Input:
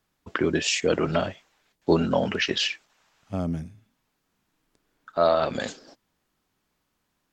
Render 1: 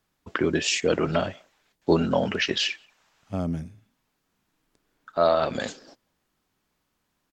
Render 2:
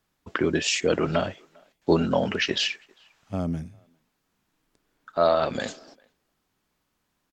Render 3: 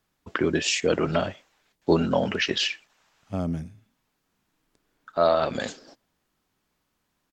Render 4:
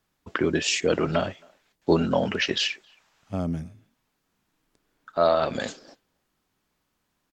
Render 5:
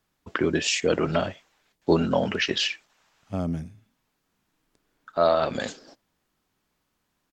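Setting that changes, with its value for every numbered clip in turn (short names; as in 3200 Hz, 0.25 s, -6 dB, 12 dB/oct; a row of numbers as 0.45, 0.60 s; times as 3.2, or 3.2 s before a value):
speakerphone echo, time: 180, 400, 120, 270, 80 ms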